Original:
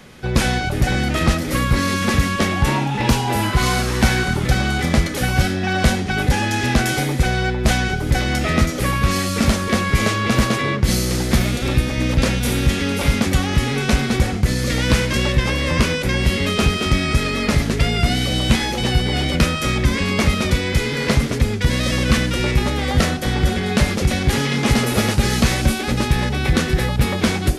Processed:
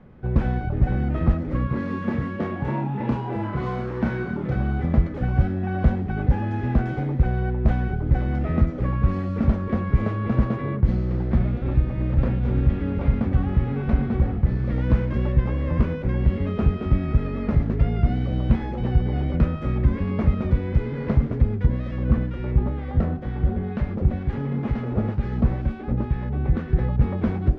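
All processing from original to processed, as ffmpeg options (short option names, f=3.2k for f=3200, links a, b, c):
-filter_complex "[0:a]asettb=1/sr,asplit=3[a][b][c];[a]atrim=end=1.674[d];[b]atrim=start=1.67:end=4.56,asetpts=PTS-STARTPTS,afade=t=in:d=0.004:c=qsin,afade=t=out:st=2.886:d=0.004:c=qsin,highpass=160,bandreject=f=770:w=14,asplit=2[e][f];[f]adelay=30,volume=-4dB[g];[e][g]amix=inputs=2:normalize=0,atrim=end_sample=127449[h];[c]atrim=start=4.556[i];[d][h]acrossfade=d=0.004:c1=hsin:c2=qsin[j];[j][i]acrossfade=d=0.004:c1=qsin:c2=hsin,asettb=1/sr,asplit=3[k][l][m];[k]atrim=end=10.914[n];[l]atrim=start=10.91:end=14.73,asetpts=PTS-STARTPTS,afade=t=in:d=0.004:c=qsin,afade=t=out:st=3.816:d=0.004:c=qsin,lowpass=5.4k,bandreject=f=50:t=h:w=6,bandreject=f=100:t=h:w=6,bandreject=f=150:t=h:w=6,bandreject=f=200:t=h:w=6,bandreject=f=250:t=h:w=6,bandreject=f=300:t=h:w=6,bandreject=f=350:t=h:w=6,bandreject=f=400:t=h:w=6,bandreject=f=450:t=h:w=6,bandreject=f=500:t=h:w=6,aecho=1:1:797:0.266,atrim=end_sample=168462[o];[m]atrim=start=14.726[p];[n][o]acrossfade=d=0.004:c1=hsin:c2=qsin[q];[q][p]acrossfade=d=0.004:c1=qsin:c2=hsin,asettb=1/sr,asplit=3[r][s][t];[r]atrim=end=21.664[u];[s]atrim=start=21.66:end=26.73,asetpts=PTS-STARTPTS,afade=t=in:d=0.004:c=qsin,afade=t=out:st=5.066:d=0.004:c=qsin,highshelf=f=9k:g=-10,acrossover=split=1200[v][w];[v]aeval=exprs='val(0)*(1-0.5/2+0.5/2*cos(2*PI*2.1*n/s))':c=same[x];[w]aeval=exprs='val(0)*(1-0.5/2-0.5/2*cos(2*PI*2.1*n/s))':c=same[y];[x][y]amix=inputs=2:normalize=0[z];[t]atrim=start=26.726[aa];[u][z]acrossfade=d=0.004:c1=hsin:c2=qsin[ab];[ab][aa]acrossfade=d=0.004:c1=qsin:c2=hsin,lowpass=1.2k,lowshelf=f=230:g=9,volume=-9dB"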